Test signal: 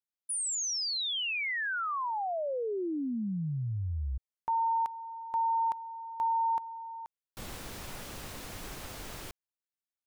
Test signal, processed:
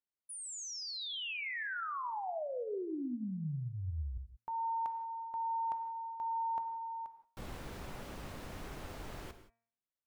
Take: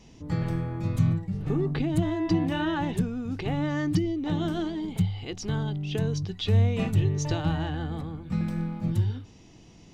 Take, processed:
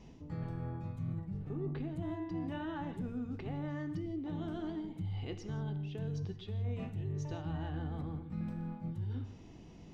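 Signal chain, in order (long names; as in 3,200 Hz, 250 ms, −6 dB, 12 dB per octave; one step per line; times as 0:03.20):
high-shelf EQ 2,900 Hz −12 dB
hum removal 115.3 Hz, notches 22
reversed playback
downward compressor 6 to 1, threshold −36 dBFS
reversed playback
reverb whose tail is shaped and stops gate 200 ms flat, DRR 10 dB
level −1 dB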